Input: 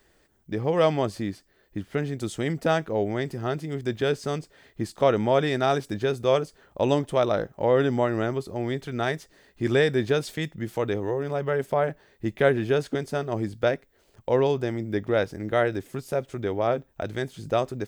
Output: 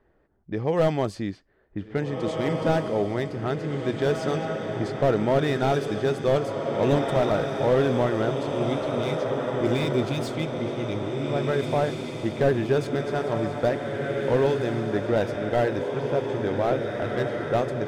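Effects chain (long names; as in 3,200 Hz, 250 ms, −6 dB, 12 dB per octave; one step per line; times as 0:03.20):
low-pass that shuts in the quiet parts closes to 1,200 Hz, open at −20.5 dBFS
time-frequency box erased 0:08.33–0:11.28, 390–2,000 Hz
feedback delay with all-pass diffusion 1,734 ms, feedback 52%, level −4.5 dB
slew-rate limiting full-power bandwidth 95 Hz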